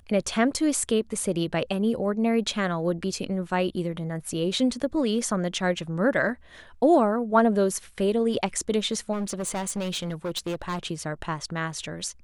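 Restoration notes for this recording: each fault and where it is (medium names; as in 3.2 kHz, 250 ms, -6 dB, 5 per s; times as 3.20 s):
9.12–10.79 s: clipped -25.5 dBFS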